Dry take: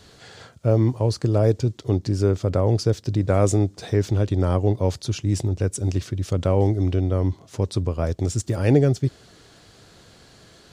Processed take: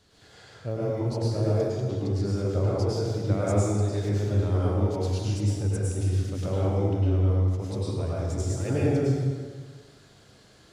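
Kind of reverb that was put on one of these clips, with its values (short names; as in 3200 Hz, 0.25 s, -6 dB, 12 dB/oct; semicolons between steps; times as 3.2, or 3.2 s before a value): plate-style reverb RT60 1.6 s, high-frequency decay 0.75×, pre-delay 90 ms, DRR -7.5 dB; gain -13 dB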